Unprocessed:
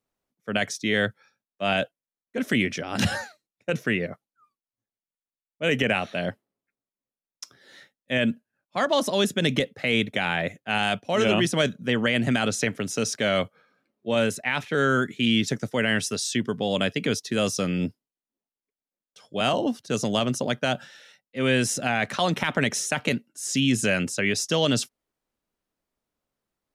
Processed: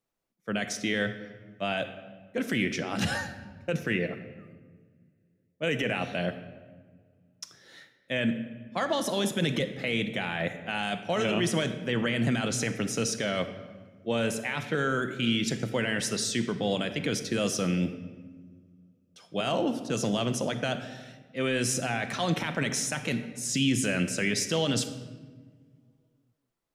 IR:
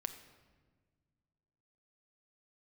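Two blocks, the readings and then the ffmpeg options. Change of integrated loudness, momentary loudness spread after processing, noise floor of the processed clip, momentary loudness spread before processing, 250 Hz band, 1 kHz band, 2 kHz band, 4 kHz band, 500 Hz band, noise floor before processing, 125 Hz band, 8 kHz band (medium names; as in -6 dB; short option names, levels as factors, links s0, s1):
-4.5 dB, 14 LU, -69 dBFS, 10 LU, -3.5 dB, -5.0 dB, -5.0 dB, -4.5 dB, -4.5 dB, under -85 dBFS, -2.5 dB, -2.0 dB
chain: -filter_complex "[0:a]alimiter=limit=0.15:level=0:latency=1:release=33[s0];[1:a]atrim=start_sample=2205[s1];[s0][s1]afir=irnorm=-1:irlink=0"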